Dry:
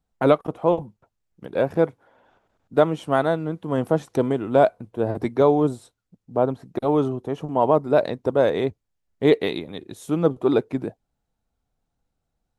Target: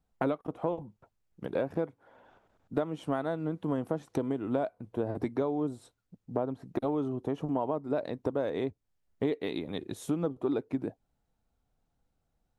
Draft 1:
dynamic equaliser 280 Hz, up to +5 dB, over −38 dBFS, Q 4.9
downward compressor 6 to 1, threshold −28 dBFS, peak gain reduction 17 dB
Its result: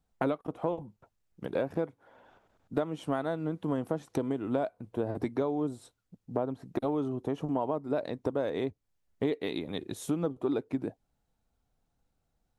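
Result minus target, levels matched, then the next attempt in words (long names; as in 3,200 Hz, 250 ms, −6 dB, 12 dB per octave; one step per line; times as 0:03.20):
8,000 Hz band +3.0 dB
dynamic equaliser 280 Hz, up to +5 dB, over −38 dBFS, Q 4.9
downward compressor 6 to 1, threshold −28 dBFS, peak gain reduction 17 dB
high-shelf EQ 2,900 Hz −3.5 dB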